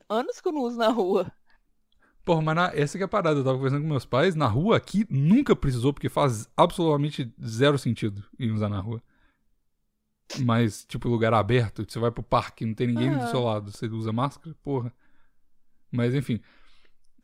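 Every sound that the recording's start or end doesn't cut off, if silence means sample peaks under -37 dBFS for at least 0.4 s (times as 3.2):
2.27–8.98
10.3–14.89
15.93–16.38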